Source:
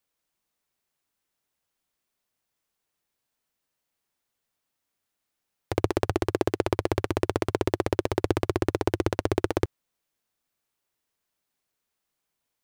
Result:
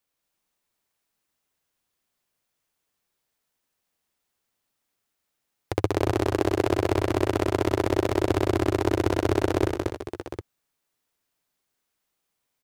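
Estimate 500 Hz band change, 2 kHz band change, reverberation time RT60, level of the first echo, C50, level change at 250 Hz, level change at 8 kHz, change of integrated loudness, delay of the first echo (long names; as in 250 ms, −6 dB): +2.5 dB, +2.5 dB, no reverb audible, −8.0 dB, no reverb audible, +3.5 dB, +2.5 dB, +2.5 dB, 73 ms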